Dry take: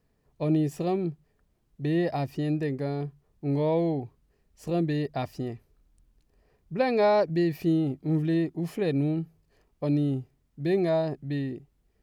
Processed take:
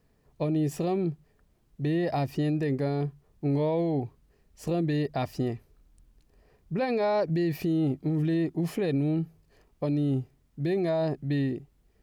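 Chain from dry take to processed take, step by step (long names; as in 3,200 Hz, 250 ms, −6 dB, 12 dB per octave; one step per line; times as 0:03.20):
brickwall limiter −24 dBFS, peak gain reduction 11 dB
level +4 dB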